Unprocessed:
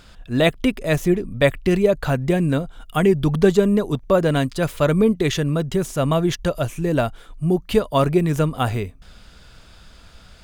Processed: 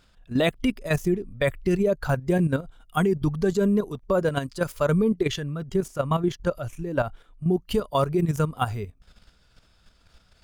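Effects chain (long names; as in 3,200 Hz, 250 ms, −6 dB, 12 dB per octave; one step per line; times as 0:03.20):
noise reduction from a noise print of the clip's start 7 dB
0:05.19–0:07.54: bass and treble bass 0 dB, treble −6 dB
output level in coarse steps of 10 dB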